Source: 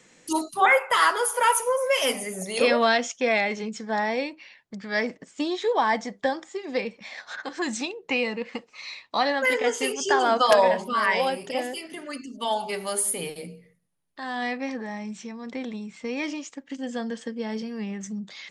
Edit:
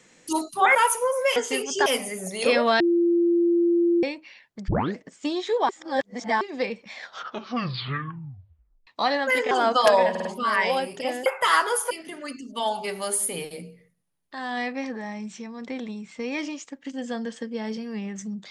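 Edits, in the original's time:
0.75–1.40 s: move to 11.76 s
2.95–4.18 s: bleep 343 Hz -17 dBFS
4.83 s: tape start 0.28 s
5.84–6.56 s: reverse
7.11 s: tape stop 1.91 s
9.66–10.16 s: move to 2.01 s
10.75 s: stutter 0.05 s, 4 plays

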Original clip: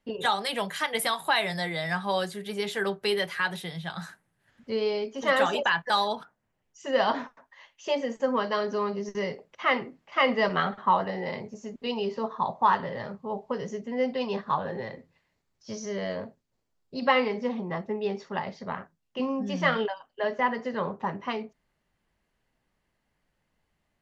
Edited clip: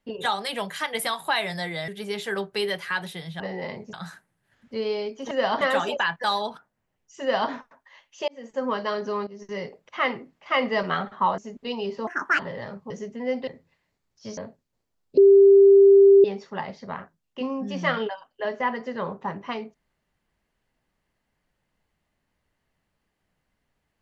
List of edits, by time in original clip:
1.88–2.37 s: delete
6.87–7.17 s: copy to 5.27 s
7.94–8.33 s: fade in
8.93–9.33 s: fade in linear, from -14 dB
11.04–11.57 s: move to 3.89 s
12.26–12.77 s: speed 158%
13.28–13.62 s: delete
14.19–14.91 s: delete
15.81–16.16 s: delete
16.96–18.03 s: bleep 395 Hz -9.5 dBFS

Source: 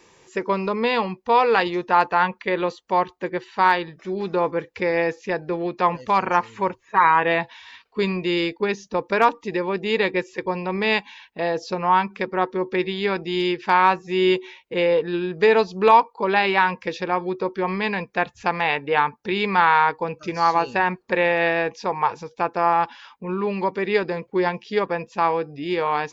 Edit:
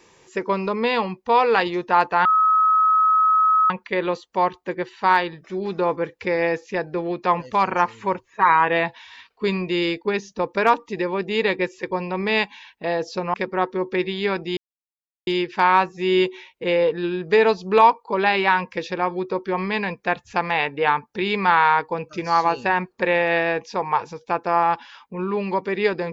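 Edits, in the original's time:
2.25 s: add tone 1.28 kHz -13.5 dBFS 1.45 s
11.89–12.14 s: delete
13.37 s: insert silence 0.70 s

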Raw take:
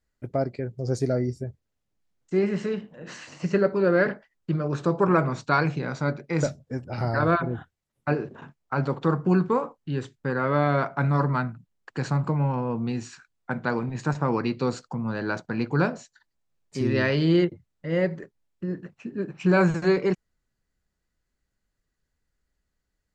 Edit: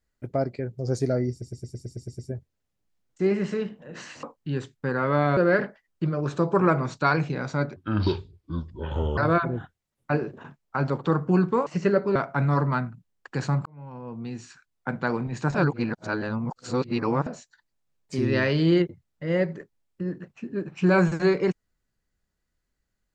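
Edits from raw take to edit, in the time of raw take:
1.31 s: stutter 0.11 s, 9 plays
3.35–3.84 s: swap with 9.64–10.78 s
6.23–7.15 s: speed 65%
12.28–13.55 s: fade in
14.17–15.89 s: reverse

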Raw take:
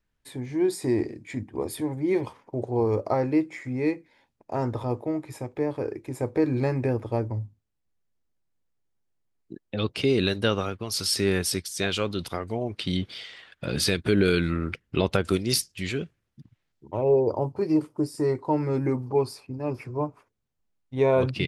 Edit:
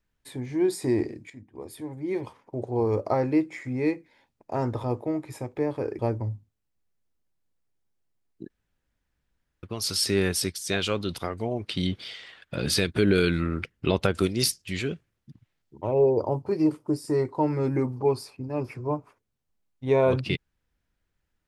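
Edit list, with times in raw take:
1.30–3.05 s: fade in, from -16 dB
5.99–7.09 s: delete
9.60–10.73 s: room tone

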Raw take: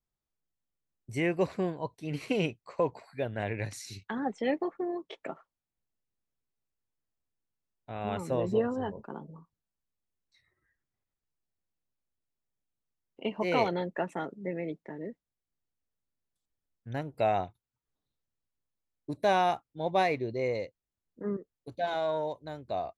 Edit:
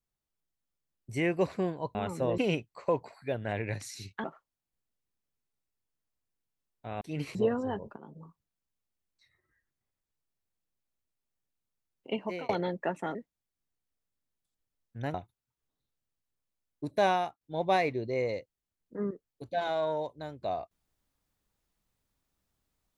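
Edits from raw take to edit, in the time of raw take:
1.95–2.29 s: swap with 8.05–8.48 s
4.15–5.28 s: delete
9.10–9.35 s: fade in, from -15 dB
13.31–13.62 s: fade out
14.28–15.06 s: delete
17.05–17.40 s: delete
19.33–19.67 s: fade out, to -23 dB

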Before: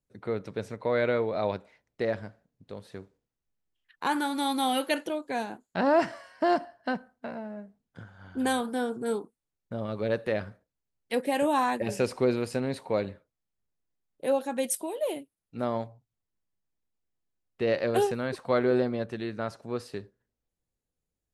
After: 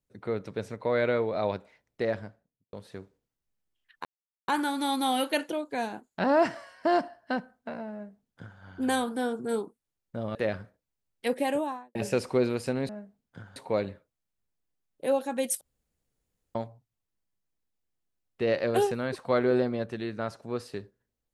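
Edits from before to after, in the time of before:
2.14–2.73 s: studio fade out
4.05 s: insert silence 0.43 s
7.50–8.17 s: copy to 12.76 s
9.92–10.22 s: delete
11.25–11.82 s: studio fade out
14.81–15.75 s: room tone

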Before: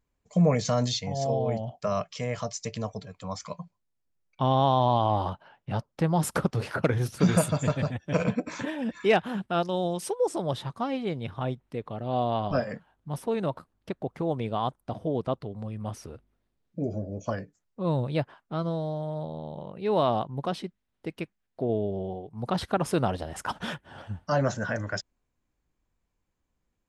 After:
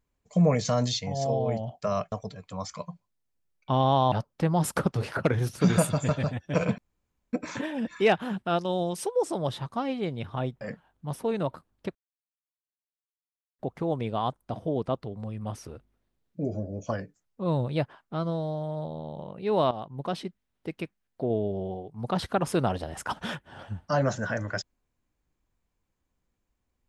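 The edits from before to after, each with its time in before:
2.12–2.83 s: delete
4.83–5.71 s: delete
8.37 s: insert room tone 0.55 s
11.65–12.64 s: delete
13.98 s: insert silence 1.64 s
20.10–20.55 s: fade in, from -13 dB

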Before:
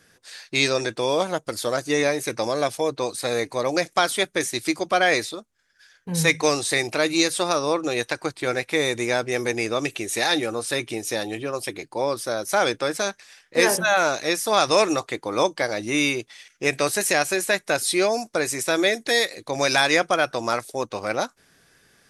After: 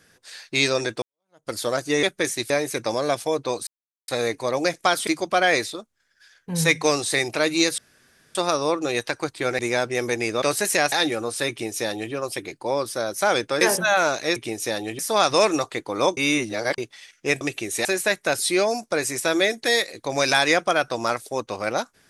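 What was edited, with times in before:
1.02–1.50 s: fade in exponential
3.20 s: insert silence 0.41 s
4.19–4.66 s: move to 2.03 s
7.37 s: insert room tone 0.57 s
8.61–8.96 s: delete
9.79–10.23 s: swap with 16.78–17.28 s
10.81–11.44 s: copy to 14.36 s
12.92–13.61 s: delete
15.54–16.15 s: reverse

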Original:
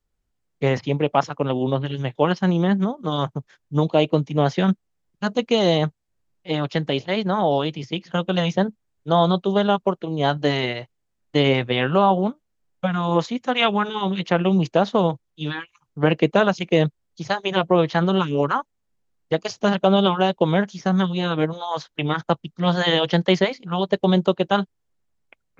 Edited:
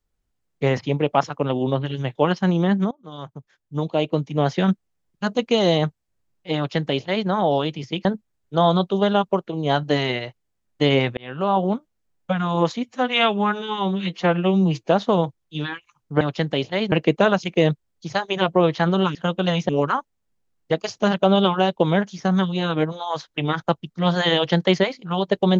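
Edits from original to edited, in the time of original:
2.91–4.67 s: fade in, from -20 dB
6.57–7.28 s: copy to 16.07 s
8.05–8.59 s: move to 18.30 s
11.71–12.22 s: fade in
13.38–14.74 s: stretch 1.5×

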